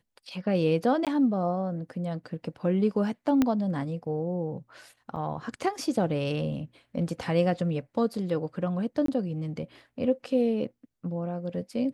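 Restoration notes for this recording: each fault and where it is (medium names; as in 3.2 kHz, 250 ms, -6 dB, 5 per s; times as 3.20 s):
1.05–1.07 s: dropout 17 ms
3.42 s: pop -11 dBFS
5.16–5.17 s: dropout 5.3 ms
9.06–9.08 s: dropout 23 ms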